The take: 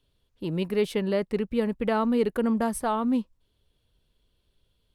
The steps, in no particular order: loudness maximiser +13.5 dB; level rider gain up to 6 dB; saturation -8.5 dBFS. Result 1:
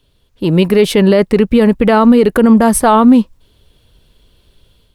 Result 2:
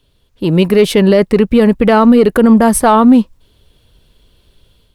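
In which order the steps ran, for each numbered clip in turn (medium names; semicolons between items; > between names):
saturation > level rider > loudness maximiser; level rider > saturation > loudness maximiser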